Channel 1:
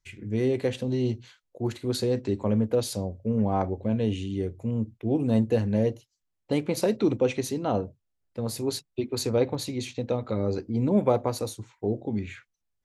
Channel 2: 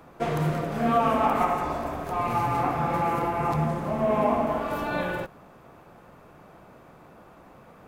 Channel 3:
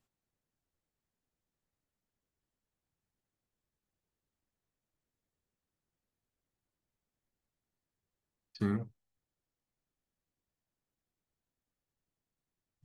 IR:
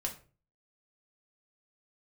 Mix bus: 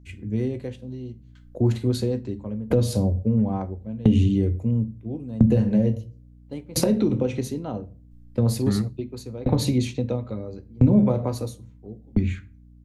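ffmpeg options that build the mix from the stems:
-filter_complex "[0:a]dynaudnorm=framelen=280:gausssize=9:maxgain=12.5dB,aeval=exprs='val(0)*pow(10,-31*if(lt(mod(0.74*n/s,1),2*abs(0.74)/1000),1-mod(0.74*n/s,1)/(2*abs(0.74)/1000),(mod(0.74*n/s,1)-2*abs(0.74)/1000)/(1-2*abs(0.74)/1000))/20)':channel_layout=same,volume=0dB,asplit=2[link_01][link_02];[link_02]volume=-6.5dB[link_03];[2:a]adelay=50,volume=2dB,asplit=2[link_04][link_05];[link_05]volume=-24dB[link_06];[link_01]agate=range=-13dB:threshold=-45dB:ratio=16:detection=peak,acompressor=threshold=-26dB:ratio=6,volume=0dB[link_07];[3:a]atrim=start_sample=2205[link_08];[link_03][link_06]amix=inputs=2:normalize=0[link_09];[link_09][link_08]afir=irnorm=-1:irlink=0[link_10];[link_04][link_07][link_10]amix=inputs=3:normalize=0,lowshelf=frequency=250:gain=11.5,acrossover=split=180[link_11][link_12];[link_12]acompressor=threshold=-20dB:ratio=5[link_13];[link_11][link_13]amix=inputs=2:normalize=0,aeval=exprs='val(0)+0.00398*(sin(2*PI*60*n/s)+sin(2*PI*2*60*n/s)/2+sin(2*PI*3*60*n/s)/3+sin(2*PI*4*60*n/s)/4+sin(2*PI*5*60*n/s)/5)':channel_layout=same"

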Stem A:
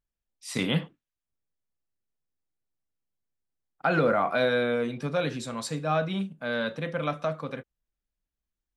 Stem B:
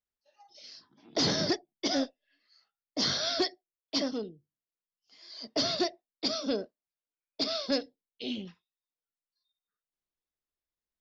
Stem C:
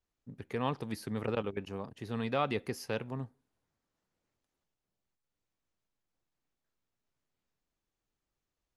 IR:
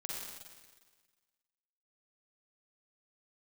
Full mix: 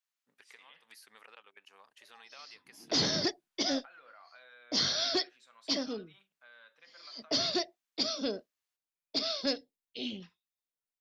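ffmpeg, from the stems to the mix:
-filter_complex "[0:a]aemphasis=mode=reproduction:type=75kf,volume=-14.5dB,asplit=2[link_01][link_02];[1:a]adynamicequalizer=threshold=0.00447:dfrequency=1700:dqfactor=0.7:tfrequency=1700:tqfactor=0.7:attack=5:release=100:ratio=0.375:range=2:mode=boostabove:tftype=highshelf,adelay=1750,volume=-3.5dB[link_03];[2:a]volume=0.5dB[link_04];[link_02]apad=whole_len=386401[link_05];[link_04][link_05]sidechaincompress=threshold=-52dB:ratio=8:attack=8.4:release=138[link_06];[link_01][link_06]amix=inputs=2:normalize=0,highpass=1400,acompressor=threshold=-55dB:ratio=3,volume=0dB[link_07];[link_03][link_07]amix=inputs=2:normalize=0"

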